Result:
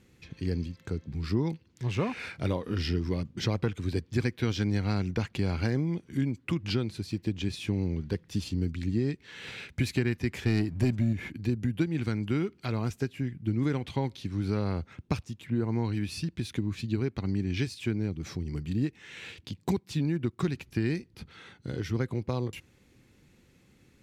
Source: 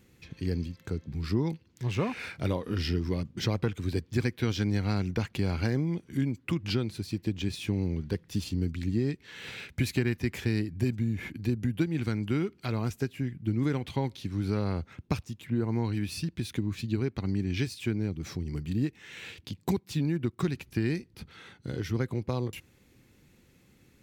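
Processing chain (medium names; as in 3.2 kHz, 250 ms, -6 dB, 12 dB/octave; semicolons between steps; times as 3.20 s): Bessel low-pass 10 kHz, order 2; 10.46–11.13 s: waveshaping leveller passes 1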